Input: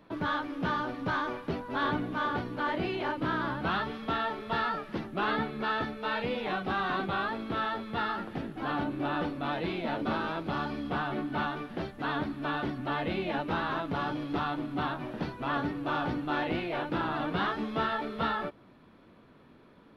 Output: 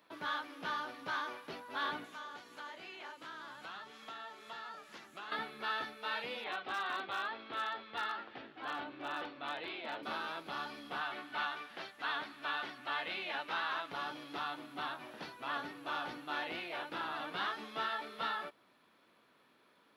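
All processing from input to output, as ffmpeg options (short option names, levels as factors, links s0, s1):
-filter_complex "[0:a]asettb=1/sr,asplit=3[s0][s1][s2];[s0]atrim=end=2.044[s3];[s1]atrim=start=2.04:end=5.32,asetpts=PTS-STARTPTS,afade=t=in:d=0.004:c=qsin,afade=t=out:st=3.276:d=0.004:c=qsin,equalizer=f=7000:w=2.4:g=11.5,bandreject=f=60:t=h:w=6,bandreject=f=120:t=h:w=6,bandreject=f=180:t=h:w=6,bandreject=f=240:t=h:w=6,bandreject=f=300:t=h:w=6,bandreject=f=360:t=h:w=6,bandreject=f=420:t=h:w=6,acrossover=split=1000|2400[s4][s5][s6];[s4]acompressor=threshold=0.00794:ratio=4[s7];[s5]acompressor=threshold=0.00501:ratio=4[s8];[s6]acompressor=threshold=0.00178:ratio=4[s9];[s7][s8][s9]amix=inputs=3:normalize=0[s10];[s2]atrim=start=5.316[s11];[s3][s10]acrossfade=d=0.004:c1=hsin:c2=qsin[s12];[s12][s11]acrossfade=d=0.004:c1=qsin:c2=hsin,asettb=1/sr,asplit=3[s13][s14][s15];[s13]atrim=end=6.444[s16];[s14]atrim=start=6.44:end=10.03,asetpts=PTS-STARTPTS,afade=t=in:d=0.004:c=qsin,afade=t=out:st=3.586:d=0.004:c=qsin,lowpass=f=4200:w=0.5412,lowpass=f=4200:w=1.3066,equalizer=f=180:t=o:w=0.26:g=-13,asoftclip=type=hard:threshold=0.0668[s17];[s15]atrim=start=10.026[s18];[s16][s17]acrossfade=d=0.004:c1=hsin:c2=qsin[s19];[s19][s18]acrossfade=d=0.004:c1=qsin:c2=hsin,asettb=1/sr,asplit=3[s20][s21][s22];[s20]atrim=end=11.014[s23];[s21]atrim=start=11.01:end=13.92,asetpts=PTS-STARTPTS,afade=t=in:d=0.004:c=qsin,afade=t=out:st=2.906:d=0.004:c=qsin,lowpass=f=3900:p=1,tiltshelf=f=690:g=-5.5[s24];[s22]atrim=start=13.916[s25];[s23][s24]acrossfade=d=0.004:c1=hsin:c2=qsin[s26];[s26][s25]acrossfade=d=0.004:c1=qsin:c2=hsin,highpass=f=1100:p=1,highshelf=f=5100:g=8,volume=0.631"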